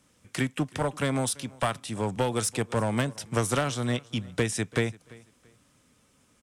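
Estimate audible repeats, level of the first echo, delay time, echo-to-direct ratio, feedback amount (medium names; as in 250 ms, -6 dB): 2, -23.0 dB, 338 ms, -22.5 dB, 28%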